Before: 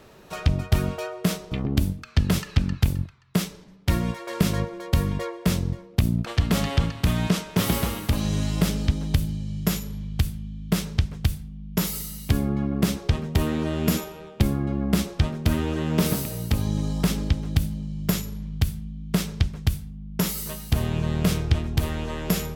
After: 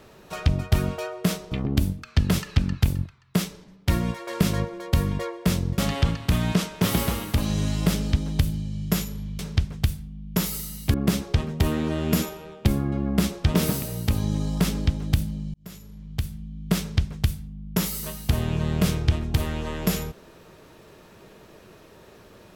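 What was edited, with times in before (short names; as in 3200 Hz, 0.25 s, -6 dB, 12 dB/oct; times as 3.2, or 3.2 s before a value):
5.78–6.53 cut
10.14–10.8 cut
12.35–12.69 cut
15.29–15.97 cut
17.97–19.12 fade in linear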